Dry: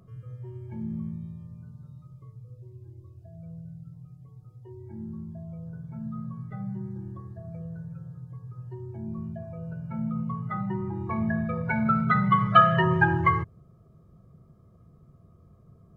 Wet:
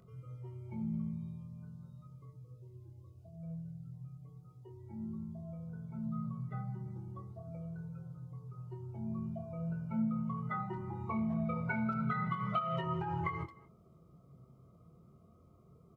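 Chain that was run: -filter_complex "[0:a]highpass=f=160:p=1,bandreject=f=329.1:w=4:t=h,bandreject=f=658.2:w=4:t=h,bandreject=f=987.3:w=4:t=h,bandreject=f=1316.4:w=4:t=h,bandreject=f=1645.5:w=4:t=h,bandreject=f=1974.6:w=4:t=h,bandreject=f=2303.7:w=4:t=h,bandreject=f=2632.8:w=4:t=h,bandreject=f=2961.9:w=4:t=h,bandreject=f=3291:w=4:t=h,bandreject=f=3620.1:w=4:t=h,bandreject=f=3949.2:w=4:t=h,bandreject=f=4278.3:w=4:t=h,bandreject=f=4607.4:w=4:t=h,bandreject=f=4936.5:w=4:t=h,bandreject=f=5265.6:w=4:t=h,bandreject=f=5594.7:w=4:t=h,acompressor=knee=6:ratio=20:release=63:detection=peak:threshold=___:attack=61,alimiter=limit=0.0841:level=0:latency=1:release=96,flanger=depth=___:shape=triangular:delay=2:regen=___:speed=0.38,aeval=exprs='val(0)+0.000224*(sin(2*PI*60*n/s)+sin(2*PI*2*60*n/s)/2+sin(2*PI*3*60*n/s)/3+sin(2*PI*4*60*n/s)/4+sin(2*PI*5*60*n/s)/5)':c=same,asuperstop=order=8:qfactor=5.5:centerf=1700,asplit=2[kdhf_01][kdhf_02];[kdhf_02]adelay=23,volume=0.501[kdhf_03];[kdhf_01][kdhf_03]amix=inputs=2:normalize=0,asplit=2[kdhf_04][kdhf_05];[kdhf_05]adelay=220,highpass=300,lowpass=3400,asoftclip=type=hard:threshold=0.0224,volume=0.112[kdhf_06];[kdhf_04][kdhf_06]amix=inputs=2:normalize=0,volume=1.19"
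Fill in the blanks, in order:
0.02, 6.1, 66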